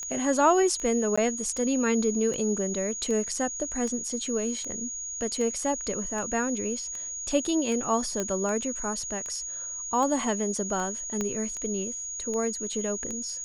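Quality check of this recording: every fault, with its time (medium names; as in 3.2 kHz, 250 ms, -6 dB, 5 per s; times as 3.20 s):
tick 78 rpm -23 dBFS
whine 6.7 kHz -33 dBFS
1.16–1.18 s: dropout 15 ms
8.20 s: pop -15 dBFS
11.21 s: pop -16 dBFS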